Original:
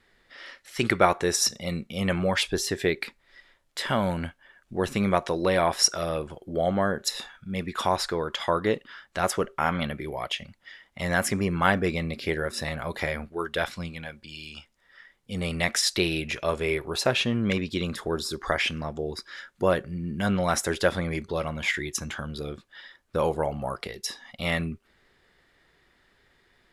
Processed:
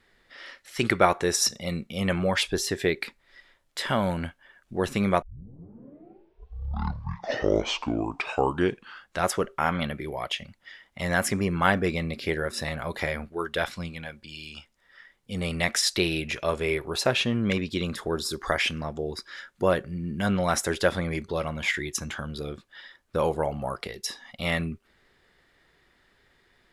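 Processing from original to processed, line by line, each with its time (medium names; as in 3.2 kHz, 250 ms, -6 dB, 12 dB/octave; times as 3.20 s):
5.22 s: tape start 4.07 s
18.25–18.72 s: treble shelf 7.9 kHz +5.5 dB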